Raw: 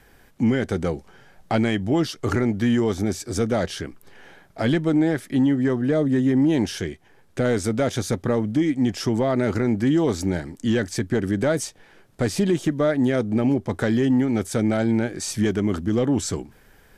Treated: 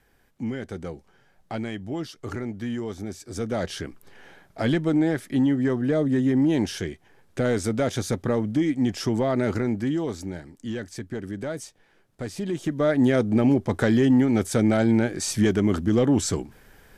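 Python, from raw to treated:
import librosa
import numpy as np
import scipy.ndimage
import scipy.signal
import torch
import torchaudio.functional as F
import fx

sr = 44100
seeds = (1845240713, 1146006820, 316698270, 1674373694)

y = fx.gain(x, sr, db=fx.line((3.19, -10.0), (3.75, -2.0), (9.5, -2.0), (10.32, -10.0), (12.38, -10.0), (12.98, 1.0)))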